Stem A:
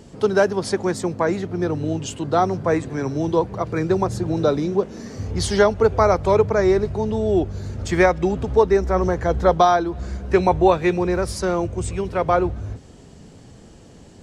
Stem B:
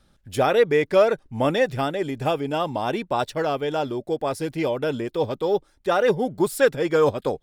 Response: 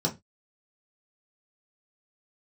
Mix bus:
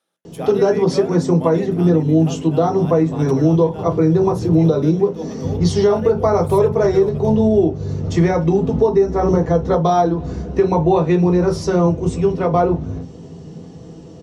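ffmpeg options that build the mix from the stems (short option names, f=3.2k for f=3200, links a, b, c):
-filter_complex "[0:a]adelay=250,volume=-3dB,asplit=2[a][b];[b]volume=-3.5dB[c];[1:a]highpass=410,equalizer=f=11k:w=2.3:g=9.5,volume=-9.5dB,asplit=2[d][e];[e]volume=-18.5dB[f];[2:a]atrim=start_sample=2205[g];[c][f]amix=inputs=2:normalize=0[h];[h][g]afir=irnorm=-1:irlink=0[i];[a][d][i]amix=inputs=3:normalize=0,alimiter=limit=-5.5dB:level=0:latency=1:release=255"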